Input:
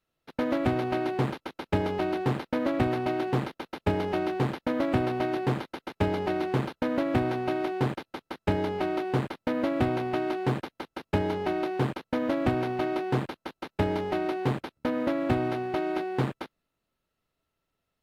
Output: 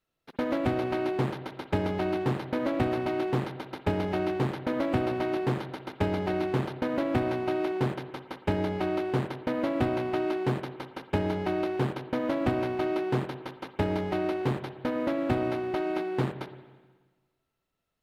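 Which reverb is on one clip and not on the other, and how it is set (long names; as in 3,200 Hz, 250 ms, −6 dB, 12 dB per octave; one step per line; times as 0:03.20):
spring reverb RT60 1.4 s, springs 54/59 ms, chirp 30 ms, DRR 10.5 dB
level −1.5 dB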